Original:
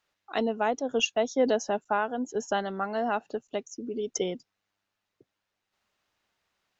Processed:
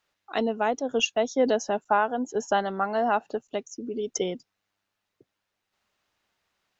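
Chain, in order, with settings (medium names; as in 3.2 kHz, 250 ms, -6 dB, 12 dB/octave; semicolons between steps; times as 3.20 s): 1.76–3.42 s: peaking EQ 890 Hz +4 dB 1.4 oct; trim +1.5 dB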